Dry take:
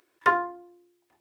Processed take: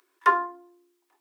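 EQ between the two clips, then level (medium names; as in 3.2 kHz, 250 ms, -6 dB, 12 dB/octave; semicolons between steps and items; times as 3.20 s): rippled Chebyshev high-pass 270 Hz, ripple 9 dB; treble shelf 2.5 kHz +9 dB; +1.5 dB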